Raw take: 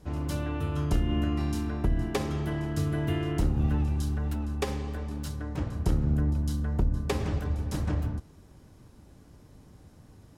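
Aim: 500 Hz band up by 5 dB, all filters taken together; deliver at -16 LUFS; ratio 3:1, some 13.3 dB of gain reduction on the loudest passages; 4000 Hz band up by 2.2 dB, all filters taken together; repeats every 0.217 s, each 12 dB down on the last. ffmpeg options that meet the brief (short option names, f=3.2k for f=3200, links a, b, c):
-af "equalizer=f=500:t=o:g=6.5,equalizer=f=4k:t=o:g=3,acompressor=threshold=-39dB:ratio=3,aecho=1:1:217|434|651:0.251|0.0628|0.0157,volume=23dB"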